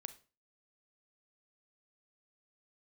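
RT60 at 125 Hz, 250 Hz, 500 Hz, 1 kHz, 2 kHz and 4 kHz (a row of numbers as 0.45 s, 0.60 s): 0.40 s, 0.40 s, 0.35 s, 0.35 s, 0.30 s, 0.30 s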